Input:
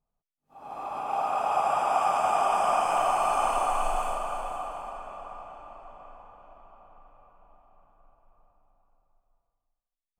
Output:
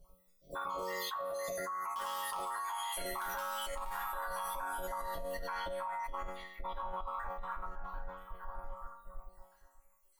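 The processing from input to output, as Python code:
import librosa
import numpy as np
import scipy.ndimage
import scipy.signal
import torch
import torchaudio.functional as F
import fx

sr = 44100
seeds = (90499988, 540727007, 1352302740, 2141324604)

p1 = fx.spec_dropout(x, sr, seeds[0], share_pct=68)
p2 = fx.graphic_eq(p1, sr, hz=(125, 250, 1000, 2000, 4000), db=(-3, -11, -6, -10, -5))
p3 = fx.formant_shift(p2, sr, semitones=5)
p4 = fx.peak_eq(p3, sr, hz=190.0, db=-3.0, octaves=0.77)
p5 = fx.notch_comb(p4, sr, f0_hz=240.0)
p6 = p5 + 10.0 ** (-23.0 / 20.0) * np.pad(p5, (int(167 * sr / 1000.0), 0))[:len(p5)]
p7 = (np.mod(10.0 ** (25.5 / 20.0) * p6 + 1.0, 2.0) - 1.0) / 10.0 ** (25.5 / 20.0)
p8 = p6 + (p7 * librosa.db_to_amplitude(-5.0))
p9 = fx.resonator_bank(p8, sr, root=54, chord='major', decay_s=0.75)
p10 = fx.env_flatten(p9, sr, amount_pct=100)
y = p10 * librosa.db_to_amplitude(10.0)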